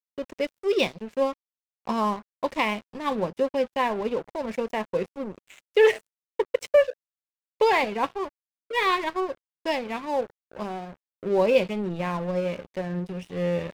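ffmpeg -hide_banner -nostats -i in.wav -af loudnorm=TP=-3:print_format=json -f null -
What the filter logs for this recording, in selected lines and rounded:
"input_i" : "-26.6",
"input_tp" : "-8.4",
"input_lra" : "2.8",
"input_thresh" : "-37.0",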